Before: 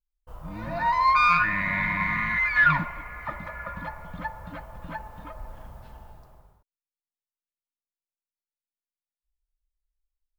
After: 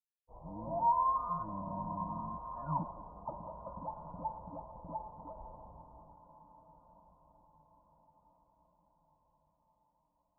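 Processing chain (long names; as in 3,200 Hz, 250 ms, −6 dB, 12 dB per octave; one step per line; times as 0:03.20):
downward expander −39 dBFS
Butterworth low-pass 980 Hz 72 dB per octave
spectral tilt +2.5 dB per octave
on a send: feedback delay with all-pass diffusion 1,445 ms, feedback 43%, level −16 dB
on the sum: level −2.5 dB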